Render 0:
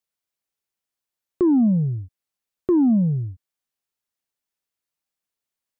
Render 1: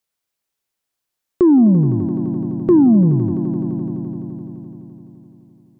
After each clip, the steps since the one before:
echo that builds up and dies away 85 ms, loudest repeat 5, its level −16 dB
level +6 dB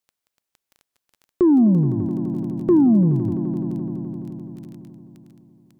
mains-hum notches 60/120 Hz
surface crackle 13 per second −32 dBFS
level −3.5 dB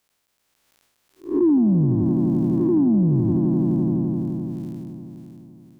spectrum smeared in time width 190 ms
brickwall limiter −20.5 dBFS, peak gain reduction 10 dB
level +8 dB

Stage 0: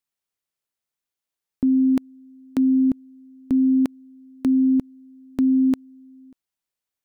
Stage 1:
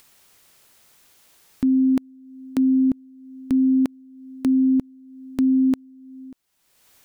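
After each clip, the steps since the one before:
upward compression, threshold −31 dBFS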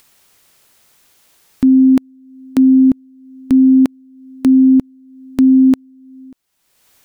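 expander for the loud parts 1.5 to 1, over −30 dBFS
level +9 dB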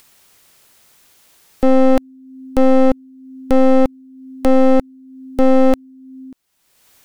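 wavefolder on the positive side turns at −15 dBFS
level +1.5 dB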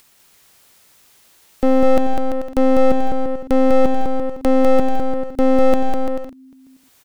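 bouncing-ball delay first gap 200 ms, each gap 0.7×, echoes 5
level −2.5 dB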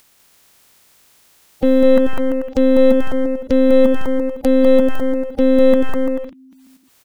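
spectral magnitudes quantised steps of 30 dB

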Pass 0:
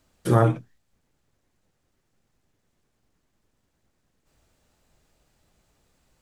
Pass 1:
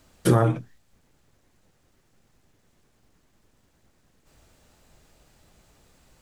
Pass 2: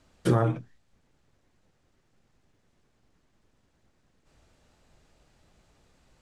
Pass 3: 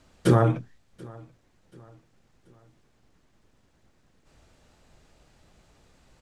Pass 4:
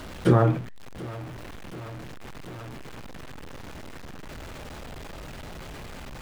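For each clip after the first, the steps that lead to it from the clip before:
downward compressor 6 to 1, threshold −23 dBFS, peak gain reduction 10.5 dB; level +8 dB
high-frequency loss of the air 50 metres; level −4 dB
repeating echo 733 ms, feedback 43%, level −24 dB; level +4 dB
converter with a step at zero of −33.5 dBFS; bass and treble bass 0 dB, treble −9 dB

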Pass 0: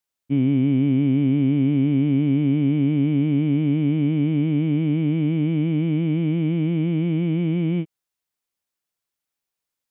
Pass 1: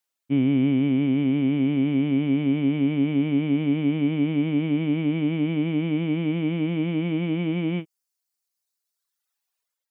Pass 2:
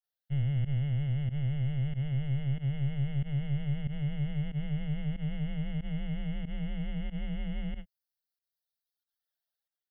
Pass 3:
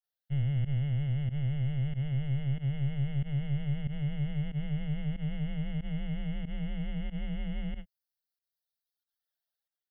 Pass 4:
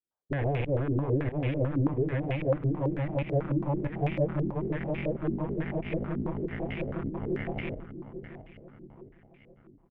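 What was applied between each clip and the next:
automatic gain control gain up to 4.5 dB; reverb reduction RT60 1.7 s; low-shelf EQ 200 Hz −11 dB; level +2.5 dB
frequency shifter −140 Hz; phaser with its sweep stopped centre 1,600 Hz, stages 8; fake sidechain pumping 93 BPM, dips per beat 1, −22 dB, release 77 ms; level −6 dB
no processing that can be heard
harmonic generator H 7 −9 dB, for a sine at −21 dBFS; repeating echo 671 ms, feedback 47%, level −11 dB; low-pass on a step sequencer 9.1 Hz 310–2,400 Hz; level −1.5 dB

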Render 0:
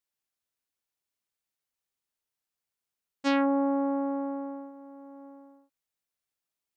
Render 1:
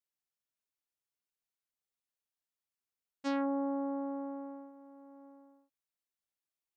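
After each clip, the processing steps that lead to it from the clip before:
dynamic equaliser 2,600 Hz, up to −7 dB, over −47 dBFS, Q 1.2
level −7.5 dB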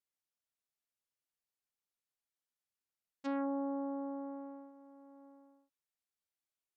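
treble cut that deepens with the level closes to 1,800 Hz, closed at −34.5 dBFS
level −3 dB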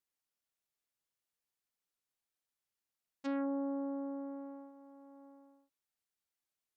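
dynamic equaliser 910 Hz, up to −6 dB, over −54 dBFS, Q 1.9
level +1 dB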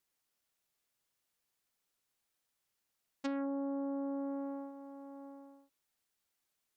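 downward compressor 6 to 1, threshold −42 dBFS, peak gain reduction 8.5 dB
level +7 dB

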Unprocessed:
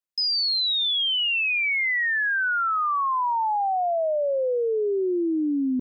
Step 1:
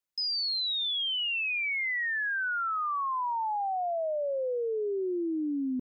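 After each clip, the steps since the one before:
brickwall limiter −29 dBFS, peak gain reduction 8.5 dB
level +1.5 dB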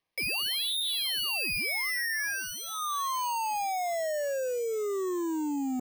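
decimation without filtering 6×
hard clipping −34 dBFS, distortion −12 dB
Butterworth band-reject 1,400 Hz, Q 4.1
level +4.5 dB

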